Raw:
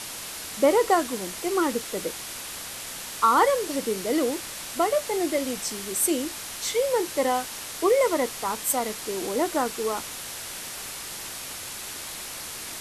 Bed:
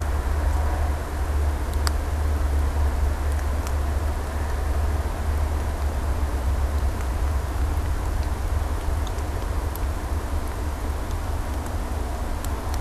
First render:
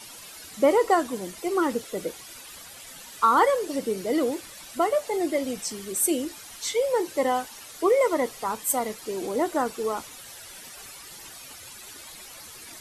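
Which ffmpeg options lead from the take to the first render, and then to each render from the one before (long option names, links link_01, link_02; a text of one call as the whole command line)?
ffmpeg -i in.wav -af "afftdn=noise_reduction=12:noise_floor=-37" out.wav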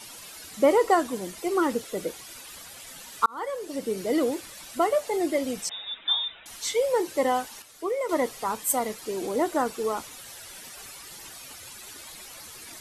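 ffmpeg -i in.wav -filter_complex "[0:a]asettb=1/sr,asplit=3[link_01][link_02][link_03];[link_01]atrim=end=5.694[link_04];[link_02]atrim=start=5.69:end=6.46,asetpts=PTS-STARTPTS,afade=type=in:duration=0.004:curve=qsin,afade=type=out:start_time=0.766:duration=0.004:curve=qsin,lowpass=frequency=3300:width_type=q:width=0.5098,lowpass=frequency=3300:width_type=q:width=0.6013,lowpass=frequency=3300:width_type=q:width=0.9,lowpass=frequency=3300:width_type=q:width=2.563,afreqshift=-3900[link_05];[link_03]atrim=start=6.456[link_06];[link_04][link_05]acrossfade=duration=0.004:curve1=hsin:curve2=qsin[link_07];[link_07][link_06]acrossfade=duration=0.004:curve1=qsin:curve2=hsin,asplit=4[link_08][link_09][link_10][link_11];[link_08]atrim=end=3.26,asetpts=PTS-STARTPTS,afade=type=out:start_time=3.256:duration=0.004:curve=hsin[link_12];[link_09]atrim=start=3.26:end=7.622,asetpts=PTS-STARTPTS,afade=type=in:duration=0.76[link_13];[link_10]atrim=start=7.618:end=8.092,asetpts=PTS-STARTPTS,volume=-8dB[link_14];[link_11]atrim=start=8.088[link_15];[link_12][link_13]concat=n=2:v=0:a=1[link_16];[link_16][link_14]acrossfade=duration=0.004:curve1=hsin:curve2=hsin[link_17];[link_17][link_15]acrossfade=duration=0.004:curve1=hsin:curve2=hsin" out.wav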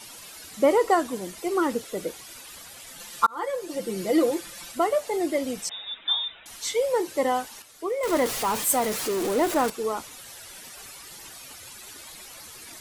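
ffmpeg -i in.wav -filter_complex "[0:a]asettb=1/sr,asplit=3[link_01][link_02][link_03];[link_01]atrim=end=2.994[link_04];[link_02]atrim=start=2.99:end=4.72,asetpts=PTS-STARTPTS,afade=type=in:duration=0.004:curve=qsin,afade=type=out:start_time=1.726:duration=0.004:curve=qsin,aecho=1:1:5.8:0.86,atrim=end_sample=76293[link_05];[link_03]atrim=start=4.716[link_06];[link_04][link_05]acrossfade=duration=0.004:curve1=hsin:curve2=qsin[link_07];[link_07][link_06]acrossfade=duration=0.004:curve1=qsin:curve2=hsin,asettb=1/sr,asplit=3[link_08][link_09][link_10];[link_08]atrim=end=8.034[link_11];[link_09]atrim=start=8.03:end=9.7,asetpts=PTS-STARTPTS,afade=type=in:duration=0.004:curve=qsin,afade=type=out:start_time=1.666:duration=0.004:curve=qsin,aeval=exprs='val(0)+0.5*0.0473*sgn(val(0))':channel_layout=same[link_12];[link_10]atrim=start=9.696[link_13];[link_11][link_12]acrossfade=duration=0.004:curve1=hsin:curve2=qsin[link_14];[link_14][link_13]acrossfade=duration=0.004:curve1=qsin:curve2=hsin" out.wav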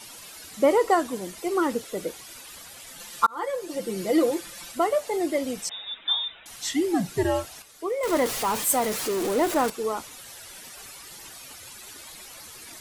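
ffmpeg -i in.wav -filter_complex "[0:a]asettb=1/sr,asplit=3[link_01][link_02][link_03];[link_01]atrim=end=6.564[link_04];[link_02]atrim=start=6.56:end=7.69,asetpts=PTS-STARTPTS,afade=type=in:duration=0.004:curve=qsin,afade=type=out:start_time=1.126:duration=0.004:curve=qsin,afreqshift=-170[link_05];[link_03]atrim=start=7.686[link_06];[link_04][link_05]acrossfade=duration=0.004:curve1=hsin:curve2=qsin[link_07];[link_07][link_06]acrossfade=duration=0.004:curve1=qsin:curve2=hsin" out.wav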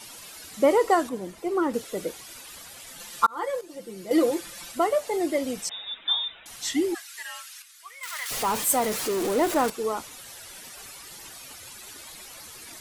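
ffmpeg -i in.wav -filter_complex "[0:a]asettb=1/sr,asplit=3[link_01][link_02][link_03];[link_01]atrim=end=1.094[link_04];[link_02]atrim=start=1.09:end=1.74,asetpts=PTS-STARTPTS,afade=type=in:duration=0.004:curve=qsin,afade=type=out:start_time=0.646:duration=0.004:curve=qsin,highshelf=frequency=2100:gain=-10[link_05];[link_03]atrim=start=1.736[link_06];[link_04][link_05]acrossfade=duration=0.004:curve1=hsin:curve2=qsin[link_07];[link_07][link_06]acrossfade=duration=0.004:curve1=qsin:curve2=hsin,asplit=3[link_08][link_09][link_10];[link_08]afade=type=out:start_time=6.93:duration=0.02[link_11];[link_09]highpass=frequency=1400:width=0.5412,highpass=frequency=1400:width=1.3066,afade=type=in:start_time=6.93:duration=0.02,afade=type=out:start_time=8.3:duration=0.02[link_12];[link_10]afade=type=in:start_time=8.3:duration=0.02[link_13];[link_11][link_12][link_13]amix=inputs=3:normalize=0,asplit=3[link_14][link_15][link_16];[link_14]atrim=end=3.612[link_17];[link_15]atrim=start=3.608:end=4.112,asetpts=PTS-STARTPTS,volume=-9dB[link_18];[link_16]atrim=start=4.108[link_19];[link_17][link_18]acrossfade=duration=0.004:curve1=hsin:curve2=hsin[link_20];[link_20][link_19]acrossfade=duration=0.004:curve1=hsin:curve2=hsin" out.wav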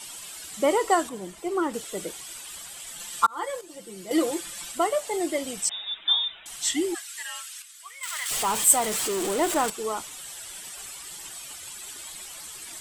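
ffmpeg -i in.wav -af "equalizer=frequency=100:width_type=o:width=0.33:gain=-11,equalizer=frequency=250:width_type=o:width=0.33:gain=-7,equalizer=frequency=500:width_type=o:width=0.33:gain=-6,equalizer=frequency=3150:width_type=o:width=0.33:gain=5,equalizer=frequency=8000:width_type=o:width=0.33:gain=10" out.wav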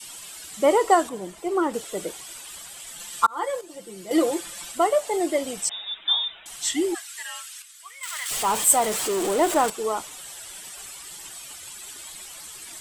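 ffmpeg -i in.wav -af "adynamicequalizer=threshold=0.0178:dfrequency=620:dqfactor=0.72:tfrequency=620:tqfactor=0.72:attack=5:release=100:ratio=0.375:range=2.5:mode=boostabove:tftype=bell" out.wav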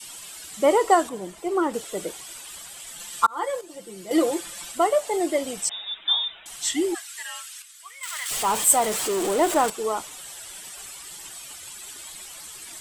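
ffmpeg -i in.wav -af anull out.wav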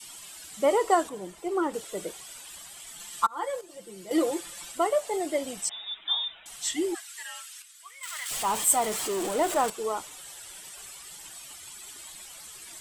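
ffmpeg -i in.wav -af "flanger=delay=0.9:depth=1.4:regen=-79:speed=0.34:shape=sinusoidal" out.wav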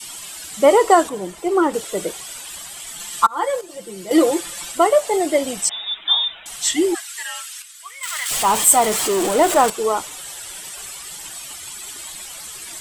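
ffmpeg -i in.wav -af "volume=10.5dB,alimiter=limit=-1dB:level=0:latency=1" out.wav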